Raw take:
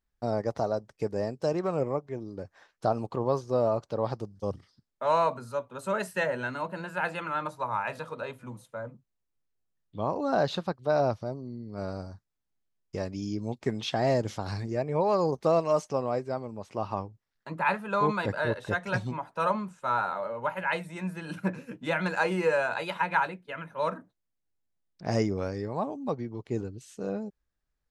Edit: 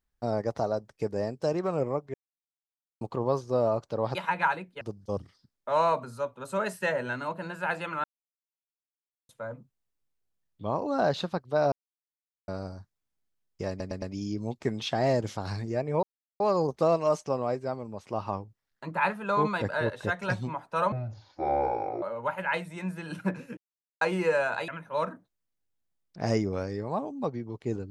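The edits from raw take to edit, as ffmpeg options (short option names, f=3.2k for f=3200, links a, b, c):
-filter_complex "[0:a]asplit=18[a][b][c][d][e][f][g][h][i][j][k][l][m][n][o][p][q][r];[a]atrim=end=2.14,asetpts=PTS-STARTPTS,afade=t=out:st=2.136:d=0.004:c=hsin[s];[b]atrim=start=2.14:end=3.01,asetpts=PTS-STARTPTS,volume=0[t];[c]atrim=start=3.01:end=4.152,asetpts=PTS-STARTPTS,afade=t=in:d=0.004:c=hsin[u];[d]atrim=start=22.868:end=23.532[v];[e]atrim=start=4.148:end=7.38,asetpts=PTS-STARTPTS,afade=t=out:st=3.228:d=0.004:c=hsin[w];[f]atrim=start=7.38:end=8.63,asetpts=PTS-STARTPTS,volume=0[x];[g]atrim=start=8.63:end=11.06,asetpts=PTS-STARTPTS,afade=t=in:d=0.004:c=hsin,afade=t=out:st=2.426:d=0.004:c=hsin[y];[h]atrim=start=11.06:end=11.82,asetpts=PTS-STARTPTS,volume=0[z];[i]atrim=start=11.82:end=13.142,asetpts=PTS-STARTPTS,afade=t=in:d=0.004:c=hsin[aa];[j]atrim=start=13.028:end=13.142[ab];[k]atrim=start=13.028:end=13.142[ac];[l]atrim=start=13.028:end=15.04,asetpts=PTS-STARTPTS,afade=t=out:st=2.008:d=0.004:c=hsin,apad=pad_dur=0.37[ad];[m]atrim=start=15.04:end=19.564,asetpts=PTS-STARTPTS,afade=t=in:d=0.004:c=hsin[ae];[n]atrim=start=19.56:end=20.21,asetpts=PTS-STARTPTS,asetrate=26019,aresample=44100[af];[o]atrim=start=20.206:end=21.76,asetpts=PTS-STARTPTS,afade=t=out:st=1.55:d=0.004:c=hsin[ag];[p]atrim=start=21.76:end=22.2,asetpts=PTS-STARTPTS,volume=0[ah];[q]atrim=start=22.2:end=22.872,asetpts=PTS-STARTPTS,afade=t=in:d=0.004:c=hsin[ai];[r]atrim=start=23.528[aj];[s][t][u]concat=n=3:v=0:a=1[ak];[ak][v]acrossfade=d=0.004:c1=hsin:c2=hsin[al];[w][x][y][z][aa]concat=n=5:v=0:a=1[am];[al][am]acrossfade=d=0.004:c1=hsin:c2=hsin[an];[an][ab]acrossfade=d=0.004:c1=hsin:c2=hsin[ao];[ao][ac]acrossfade=d=0.004:c1=hsin:c2=hsin[ap];[ad][ae]concat=n=2:v=0:a=1[aq];[ap][aq]acrossfade=d=0.004:c1=hsin:c2=hsin[ar];[ar][af]acrossfade=d=0.004:c1=hsin:c2=hsin[as];[ag][ah][ai]concat=n=3:v=0:a=1[at];[as][at]acrossfade=d=0.004:c1=hsin:c2=hsin[au];[au][aj]acrossfade=d=0.004:c1=hsin:c2=hsin"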